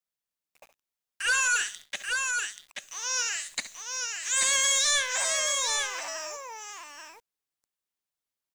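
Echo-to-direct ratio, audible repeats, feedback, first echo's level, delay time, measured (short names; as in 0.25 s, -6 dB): -3.5 dB, 2, no steady repeat, -13.5 dB, 68 ms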